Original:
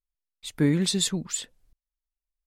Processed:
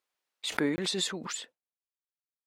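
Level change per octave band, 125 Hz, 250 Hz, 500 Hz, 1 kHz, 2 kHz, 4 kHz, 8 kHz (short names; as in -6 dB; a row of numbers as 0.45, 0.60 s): -15.0, -8.0, -2.5, +7.0, +2.5, -3.0, -7.5 dB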